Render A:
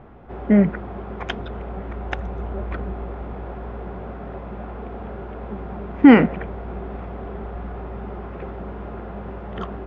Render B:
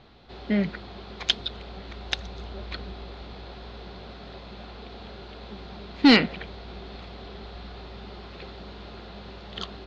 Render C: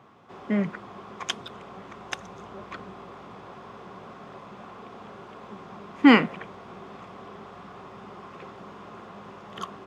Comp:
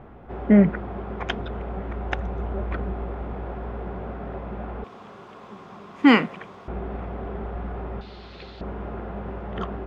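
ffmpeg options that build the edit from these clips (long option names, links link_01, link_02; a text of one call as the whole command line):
ffmpeg -i take0.wav -i take1.wav -i take2.wav -filter_complex "[0:a]asplit=3[link_01][link_02][link_03];[link_01]atrim=end=4.842[link_04];[2:a]atrim=start=4.838:end=6.682[link_05];[link_02]atrim=start=6.678:end=8.012[link_06];[1:a]atrim=start=8.008:end=8.612[link_07];[link_03]atrim=start=8.608[link_08];[link_04][link_05]acrossfade=duration=0.004:curve1=hsin:curve2=hsin[link_09];[link_09][link_06]acrossfade=duration=0.004:curve1=hsin:curve2=hsin[link_10];[link_10][link_07]acrossfade=duration=0.004:curve1=hsin:curve2=hsin[link_11];[link_11][link_08]acrossfade=duration=0.004:curve1=hsin:curve2=hsin" out.wav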